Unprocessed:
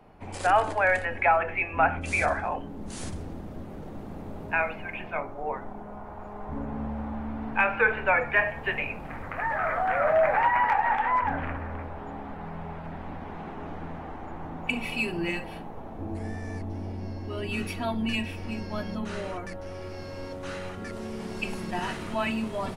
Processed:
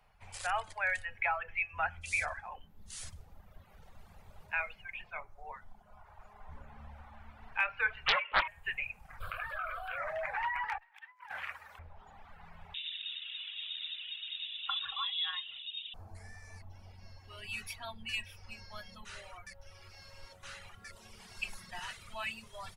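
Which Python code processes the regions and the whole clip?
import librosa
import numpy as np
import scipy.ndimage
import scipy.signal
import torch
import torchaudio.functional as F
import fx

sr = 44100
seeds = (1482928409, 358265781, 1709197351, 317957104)

y = fx.chain(x, sr, fx.peak_eq(hz=2200.0, db=8.5, octaves=0.82),
    fx.freq_invert(carrier_hz=2800),
    fx.doppler_dist(depth_ms=0.74), at=(8.06, 8.48))
y = fx.chain(y, sr, fx.high_shelf(hz=2600.0, db=6.5),
    fx.fixed_phaser(hz=1300.0, stages=8),
    fx.env_flatten(amount_pct=70), at=(9.2, 9.98))
y = fx.chain(y, sr, fx.highpass(hz=1100.0, slope=6),
    fx.high_shelf(hz=4900.0, db=11.0),
    fx.over_compress(threshold_db=-35.0, ratio=-0.5), at=(10.78, 11.79))
y = fx.chain(y, sr, fx.peak_eq(hz=960.0, db=6.5, octaves=0.39),
    fx.freq_invert(carrier_hz=3700), at=(12.74, 15.94))
y = fx.tone_stack(y, sr, knobs='10-0-10')
y = fx.dereverb_blind(y, sr, rt60_s=1.3)
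y = y * librosa.db_to_amplitude(-1.5)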